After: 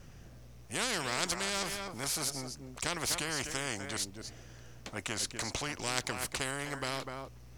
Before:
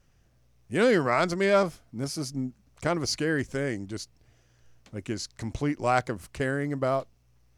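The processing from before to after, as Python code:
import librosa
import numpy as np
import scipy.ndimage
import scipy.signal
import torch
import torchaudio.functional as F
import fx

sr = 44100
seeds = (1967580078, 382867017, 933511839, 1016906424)

p1 = fx.low_shelf(x, sr, hz=390.0, db=4.5)
p2 = p1 + fx.echo_single(p1, sr, ms=249, db=-17.0, dry=0)
p3 = fx.spectral_comp(p2, sr, ratio=4.0)
y = F.gain(torch.from_numpy(p3), -3.0).numpy()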